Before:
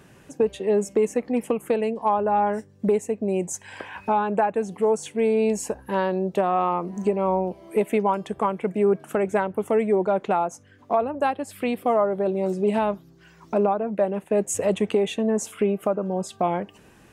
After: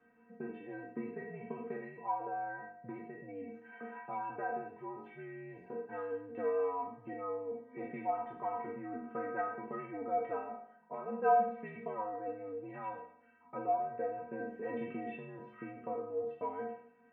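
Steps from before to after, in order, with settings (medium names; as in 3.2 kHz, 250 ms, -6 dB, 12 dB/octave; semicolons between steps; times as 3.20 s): spectral sustain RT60 0.70 s; mistuned SSB -79 Hz 230–2300 Hz; inharmonic resonator 230 Hz, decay 0.37 s, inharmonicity 0.008; trim +1 dB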